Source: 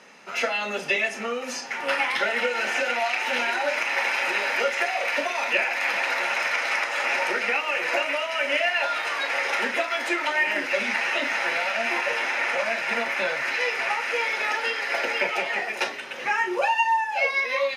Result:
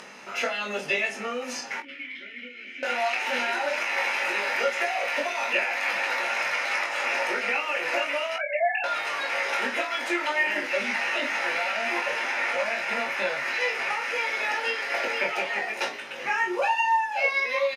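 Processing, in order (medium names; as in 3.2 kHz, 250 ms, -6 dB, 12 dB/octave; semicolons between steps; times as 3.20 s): 8.36–8.84 s: formants replaced by sine waves; upward compressor, threshold -35 dBFS; 1.80–2.83 s: vowel filter i; early reflections 20 ms -4 dB, 46 ms -15.5 dB; trim -3.5 dB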